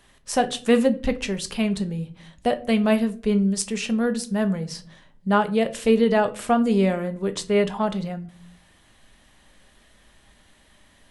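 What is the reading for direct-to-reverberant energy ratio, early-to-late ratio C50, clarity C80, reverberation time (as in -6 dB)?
8.0 dB, 17.0 dB, 22.5 dB, not exponential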